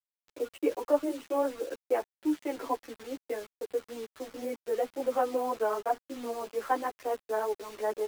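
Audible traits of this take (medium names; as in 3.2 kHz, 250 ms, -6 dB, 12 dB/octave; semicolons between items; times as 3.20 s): tremolo saw down 0.78 Hz, depth 30%; a quantiser's noise floor 8-bit, dither none; a shimmering, thickened sound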